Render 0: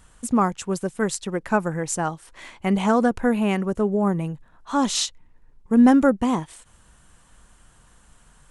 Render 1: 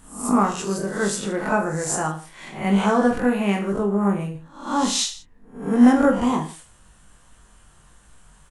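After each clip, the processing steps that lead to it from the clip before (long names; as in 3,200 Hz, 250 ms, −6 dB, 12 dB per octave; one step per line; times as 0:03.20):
peak hold with a rise ahead of every peak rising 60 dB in 0.50 s
on a send: reverse bouncing-ball delay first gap 20 ms, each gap 1.25×, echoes 5
on the sum: level −2.5 dB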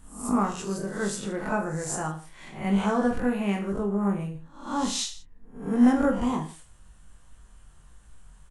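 low-shelf EQ 100 Hz +11 dB
level −7 dB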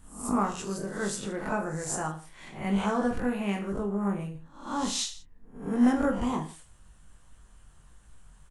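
harmonic and percussive parts rebalanced percussive +4 dB
level −3.5 dB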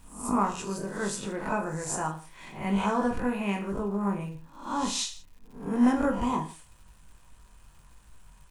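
surface crackle 330 per second −51 dBFS
hollow resonant body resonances 980/2,500 Hz, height 9 dB, ringing for 35 ms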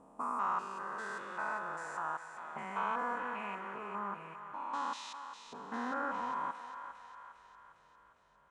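spectrum averaged block by block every 200 ms
envelope filter 490–1,300 Hz, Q 2, up, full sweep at −32.5 dBFS
feedback echo with a high-pass in the loop 404 ms, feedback 63%, high-pass 820 Hz, level −7.5 dB
level +2 dB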